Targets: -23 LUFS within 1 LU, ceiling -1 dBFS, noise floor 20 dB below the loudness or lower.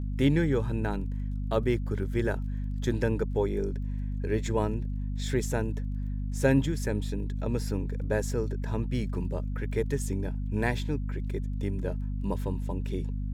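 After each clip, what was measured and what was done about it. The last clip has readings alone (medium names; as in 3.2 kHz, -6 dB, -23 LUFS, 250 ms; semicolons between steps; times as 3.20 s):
tick rate 16 per s; hum 50 Hz; highest harmonic 250 Hz; hum level -29 dBFS; loudness -30.5 LUFS; peak level -11.5 dBFS; loudness target -23.0 LUFS
-> de-click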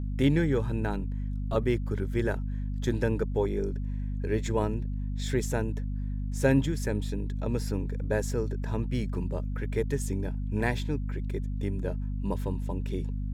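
tick rate 0.52 per s; hum 50 Hz; highest harmonic 250 Hz; hum level -29 dBFS
-> de-hum 50 Hz, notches 5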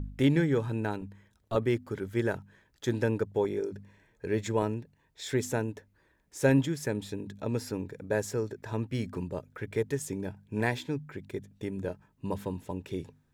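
hum not found; loudness -32.0 LUFS; peak level -13.0 dBFS; loudness target -23.0 LUFS
-> trim +9 dB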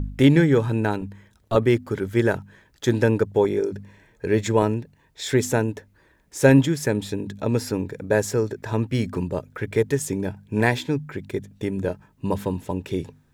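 loudness -23.0 LUFS; peak level -4.0 dBFS; noise floor -60 dBFS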